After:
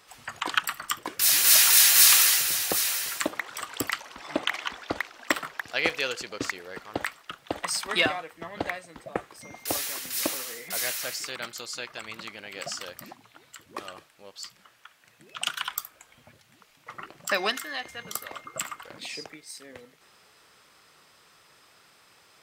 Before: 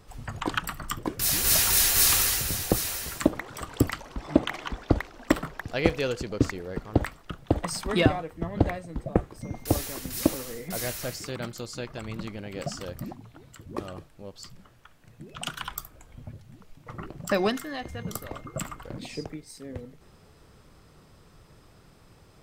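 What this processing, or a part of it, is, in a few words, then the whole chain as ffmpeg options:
filter by subtraction: -filter_complex "[0:a]asplit=2[link_01][link_02];[link_02]lowpass=2100,volume=-1[link_03];[link_01][link_03]amix=inputs=2:normalize=0,volume=4dB"

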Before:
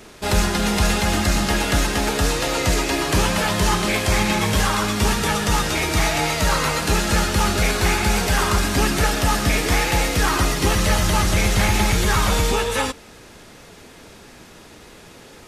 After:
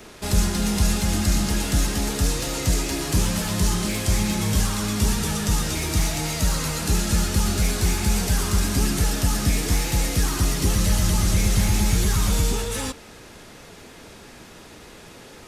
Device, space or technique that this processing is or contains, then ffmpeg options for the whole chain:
one-band saturation: -filter_complex "[0:a]acrossover=split=290|4700[link_01][link_02][link_03];[link_02]asoftclip=type=tanh:threshold=-32dB[link_04];[link_01][link_04][link_03]amix=inputs=3:normalize=0"

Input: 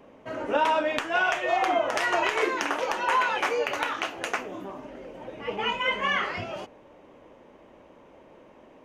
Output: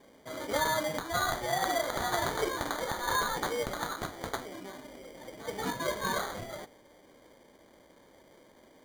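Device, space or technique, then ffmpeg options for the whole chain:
crushed at another speed: -af "asetrate=22050,aresample=44100,acrusher=samples=33:mix=1:aa=0.000001,asetrate=88200,aresample=44100,volume=-6dB"

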